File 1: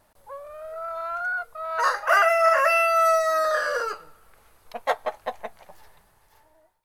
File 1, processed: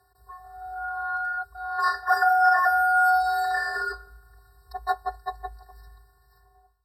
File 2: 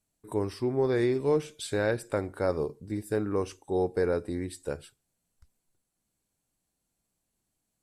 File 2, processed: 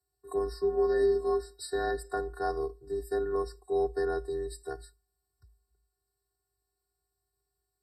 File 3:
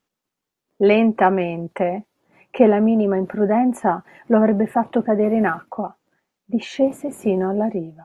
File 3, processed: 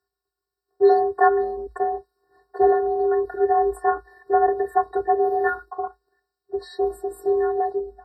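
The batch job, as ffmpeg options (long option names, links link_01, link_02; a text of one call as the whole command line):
ffmpeg -i in.wav -af "afftfilt=real='hypot(re,im)*cos(PI*b)':imag='0':win_size=512:overlap=0.75,afreqshift=53,afftfilt=real='re*eq(mod(floor(b*sr/1024/1900),2),0)':imag='im*eq(mod(floor(b*sr/1024/1900),2),0)':win_size=1024:overlap=0.75,volume=2dB" out.wav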